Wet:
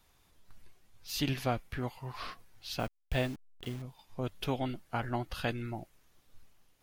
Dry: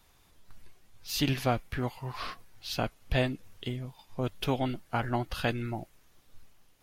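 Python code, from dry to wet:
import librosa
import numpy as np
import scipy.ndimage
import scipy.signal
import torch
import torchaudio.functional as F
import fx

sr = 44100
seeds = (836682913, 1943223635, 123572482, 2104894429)

y = fx.delta_hold(x, sr, step_db=-41.5, at=(2.79, 3.82))
y = y * librosa.db_to_amplitude(-4.0)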